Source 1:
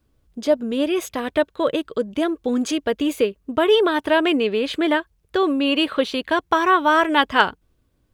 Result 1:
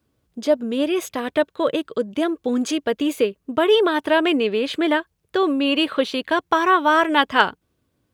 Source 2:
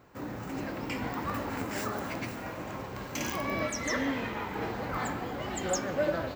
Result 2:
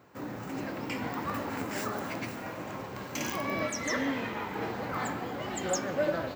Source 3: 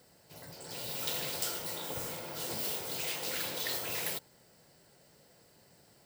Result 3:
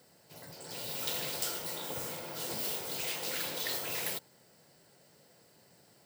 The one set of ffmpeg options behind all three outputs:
-af "highpass=100"

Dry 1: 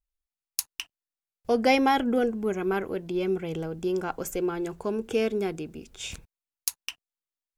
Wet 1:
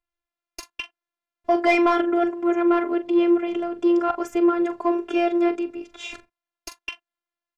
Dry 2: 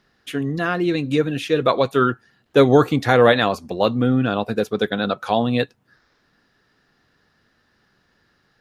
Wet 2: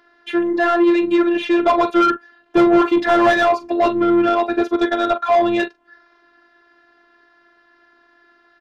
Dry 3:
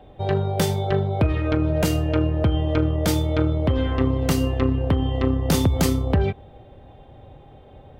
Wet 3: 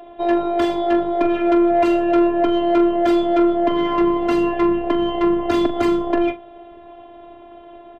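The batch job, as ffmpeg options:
-filter_complex "[0:a]lowpass=f=3300:p=1,asplit=2[s0][s1];[s1]adelay=42,volume=0.211[s2];[s0][s2]amix=inputs=2:normalize=0,afftfilt=real='hypot(re,im)*cos(PI*b)':imag='0':win_size=512:overlap=0.75,asplit=2[s3][s4];[s4]highpass=f=720:p=1,volume=15.8,asoftclip=type=tanh:threshold=0.631[s5];[s3][s5]amix=inputs=2:normalize=0,lowpass=f=1300:p=1,volume=0.501"

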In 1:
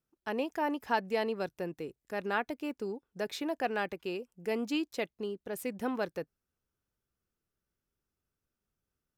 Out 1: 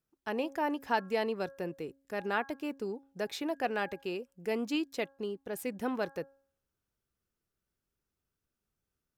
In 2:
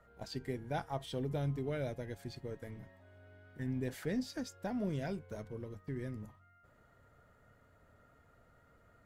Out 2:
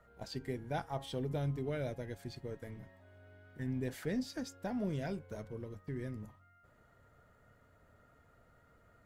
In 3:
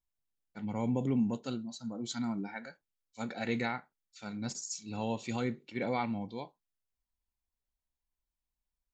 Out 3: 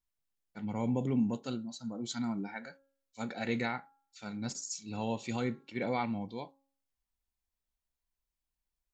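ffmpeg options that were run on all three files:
-af "bandreject=f=273.7:t=h:w=4,bandreject=f=547.4:t=h:w=4,bandreject=f=821.1:t=h:w=4,bandreject=f=1094.8:t=h:w=4,bandreject=f=1368.5:t=h:w=4,bandreject=f=1642.2:t=h:w=4"

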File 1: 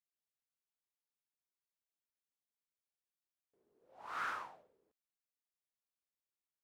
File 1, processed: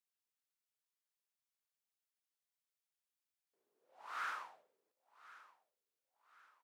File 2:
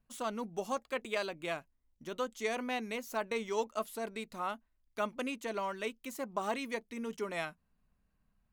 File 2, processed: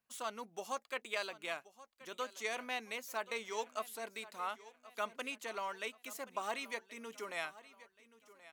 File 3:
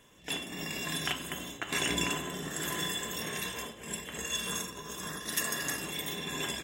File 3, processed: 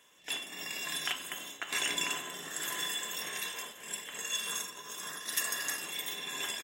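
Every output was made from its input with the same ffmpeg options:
-filter_complex "[0:a]highpass=f=1000:p=1,asplit=2[s0][s1];[s1]aecho=0:1:1078|2156|3234:0.126|0.0504|0.0201[s2];[s0][s2]amix=inputs=2:normalize=0"

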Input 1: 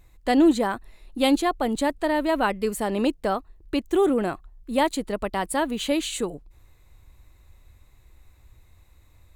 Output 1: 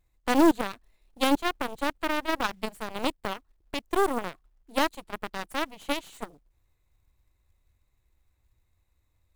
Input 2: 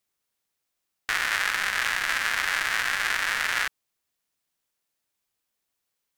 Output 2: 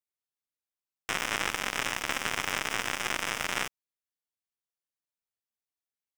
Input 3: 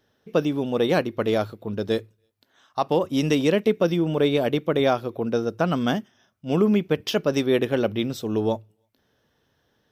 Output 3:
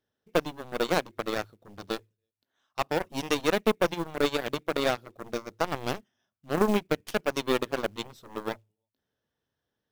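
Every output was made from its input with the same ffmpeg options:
-af "aeval=exprs='0.447*(cos(1*acos(clip(val(0)/0.447,-1,1)))-cos(1*PI/2))+0.0562*(cos(4*acos(clip(val(0)/0.447,-1,1)))-cos(4*PI/2))+0.0794*(cos(7*acos(clip(val(0)/0.447,-1,1)))-cos(7*PI/2))':c=same,acrusher=bits=5:mode=log:mix=0:aa=0.000001,volume=0.631"

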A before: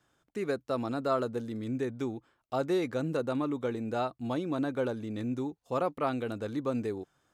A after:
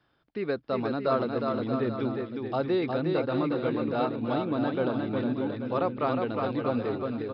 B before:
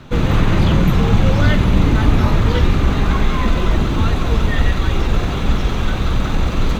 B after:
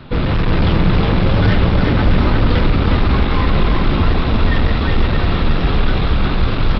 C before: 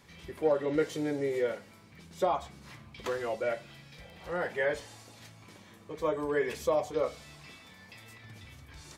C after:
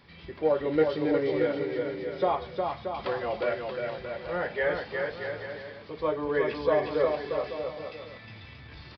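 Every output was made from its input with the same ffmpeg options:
-af "aresample=11025,asoftclip=type=hard:threshold=0.2,aresample=44100,aecho=1:1:360|630|832.5|984.4|1098:0.631|0.398|0.251|0.158|0.1,volume=1.26"

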